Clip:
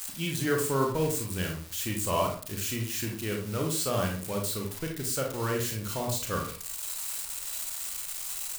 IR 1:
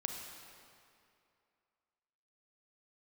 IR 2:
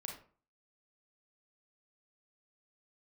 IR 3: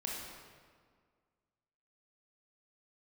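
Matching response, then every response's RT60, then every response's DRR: 2; 2.5 s, 0.45 s, 1.8 s; 2.5 dB, 0.5 dB, -3.5 dB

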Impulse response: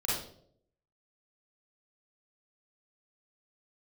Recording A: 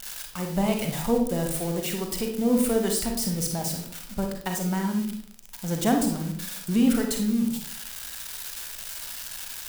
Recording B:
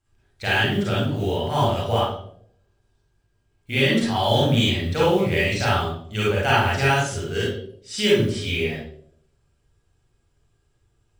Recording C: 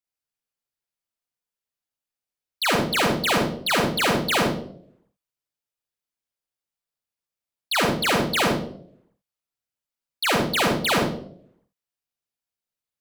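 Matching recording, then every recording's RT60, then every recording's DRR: B; 0.65 s, 0.65 s, 0.65 s; 2.5 dB, -7.5 dB, -1.5 dB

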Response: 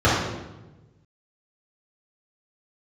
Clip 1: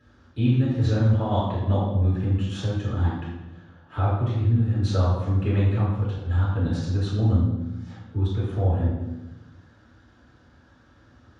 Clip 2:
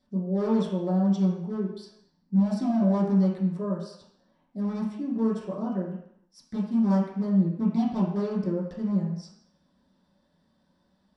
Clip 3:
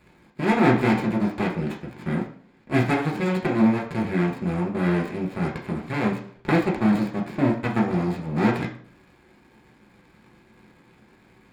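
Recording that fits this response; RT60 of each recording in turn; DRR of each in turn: 1; 1.1 s, 0.70 s, 0.55 s; -10.0 dB, -8.5 dB, -2.0 dB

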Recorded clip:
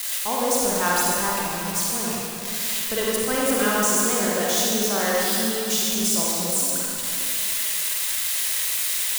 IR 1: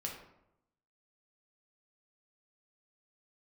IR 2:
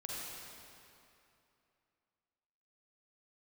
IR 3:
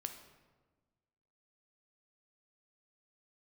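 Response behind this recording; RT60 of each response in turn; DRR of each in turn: 2; 0.85 s, 2.8 s, 1.3 s; -1.0 dB, -5.0 dB, 6.0 dB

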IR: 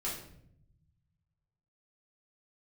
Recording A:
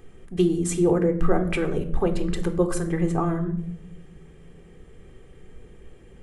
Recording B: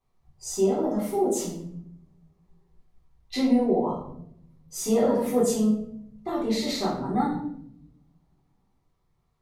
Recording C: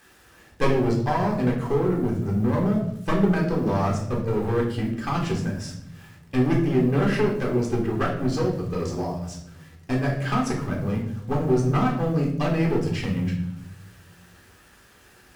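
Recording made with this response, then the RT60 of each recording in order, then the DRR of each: B; 0.70 s, 0.70 s, 0.70 s; 7.5 dB, -6.5 dB, -1.5 dB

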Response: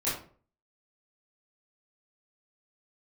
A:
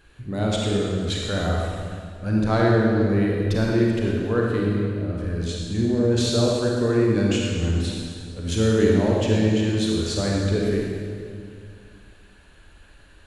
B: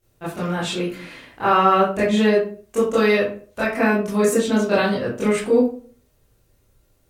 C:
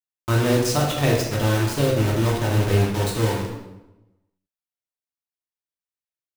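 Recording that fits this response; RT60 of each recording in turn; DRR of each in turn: B; 2.2 s, 0.45 s, 1.0 s; -2.5 dB, -11.0 dB, -3.5 dB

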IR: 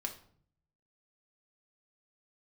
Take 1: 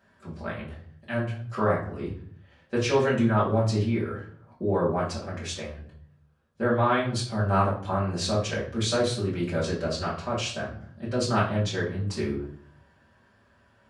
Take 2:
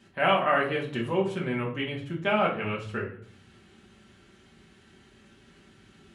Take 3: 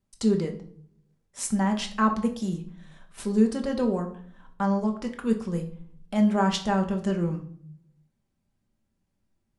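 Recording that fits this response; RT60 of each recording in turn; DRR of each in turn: 3; 0.55 s, 0.55 s, 0.55 s; -8.5 dB, -3.5 dB, 2.5 dB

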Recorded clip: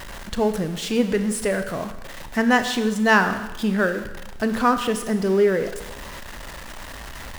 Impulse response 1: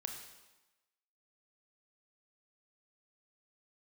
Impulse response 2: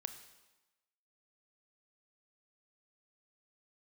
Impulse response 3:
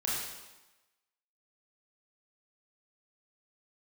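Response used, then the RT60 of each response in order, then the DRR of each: 2; 1.1 s, 1.1 s, 1.1 s; 3.0 dB, 8.5 dB, -6.5 dB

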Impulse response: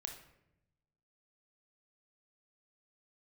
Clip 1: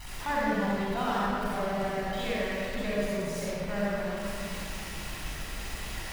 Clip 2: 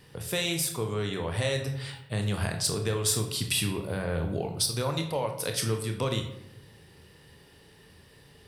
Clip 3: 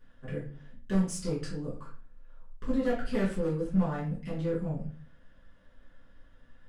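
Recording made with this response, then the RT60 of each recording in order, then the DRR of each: 2; 2.6 s, 0.85 s, 0.40 s; -8.0 dB, 4.0 dB, -9.5 dB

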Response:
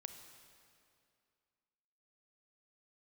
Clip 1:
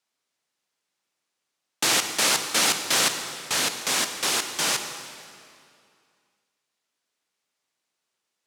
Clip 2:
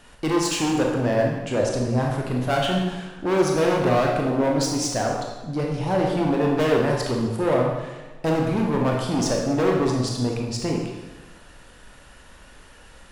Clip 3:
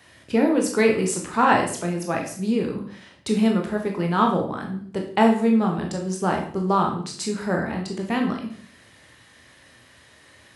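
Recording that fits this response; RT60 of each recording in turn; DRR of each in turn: 1; 2.4 s, 1.2 s, 0.50 s; 7.0 dB, -1.0 dB, 1.5 dB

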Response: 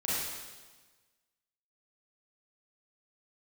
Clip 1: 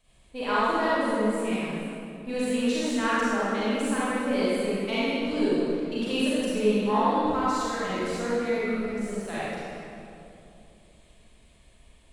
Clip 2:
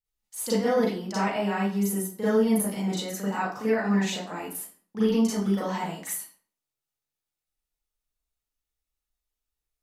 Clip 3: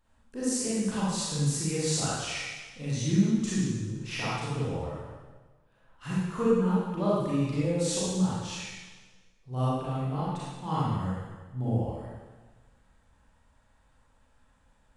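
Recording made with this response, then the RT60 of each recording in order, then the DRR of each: 3; 2.7 s, 0.50 s, 1.3 s; -10.5 dB, -10.0 dB, -9.0 dB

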